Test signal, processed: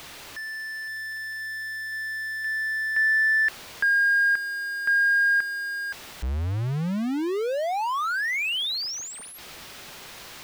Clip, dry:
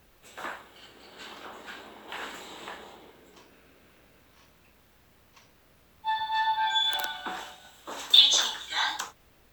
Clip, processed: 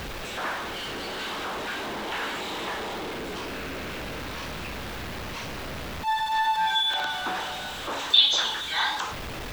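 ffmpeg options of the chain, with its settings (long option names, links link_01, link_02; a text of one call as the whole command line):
ffmpeg -i in.wav -filter_complex "[0:a]aeval=exprs='val(0)+0.5*0.0422*sgn(val(0))':channel_layout=same,acrossover=split=5100[link_01][link_02];[link_02]acompressor=threshold=-48dB:ratio=4:attack=1:release=60[link_03];[link_01][link_03]amix=inputs=2:normalize=0" out.wav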